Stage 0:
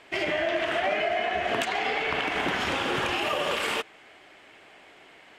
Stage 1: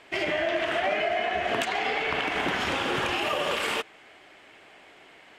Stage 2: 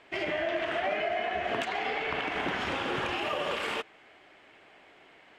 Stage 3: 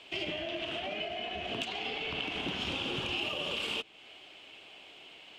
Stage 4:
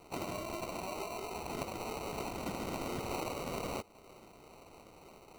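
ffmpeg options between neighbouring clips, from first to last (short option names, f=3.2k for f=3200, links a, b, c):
-af anull
-af "lowpass=f=3.8k:p=1,volume=-3.5dB"
-filter_complex "[0:a]acrossover=split=320[a][b];[b]acompressor=threshold=-45dB:ratio=2[c];[a][c]amix=inputs=2:normalize=0,highshelf=f=2.3k:t=q:w=3:g=7"
-af "acrusher=samples=26:mix=1:aa=0.000001,volume=-3.5dB"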